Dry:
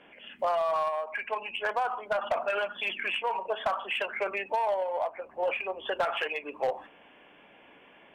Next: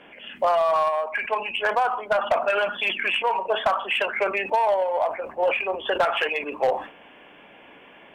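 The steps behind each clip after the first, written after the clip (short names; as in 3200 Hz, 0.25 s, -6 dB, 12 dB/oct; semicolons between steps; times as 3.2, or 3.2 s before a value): sustainer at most 130 dB/s; gain +7 dB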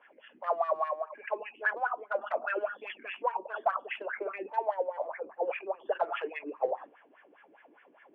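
wah 4.9 Hz 300–1800 Hz, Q 5.8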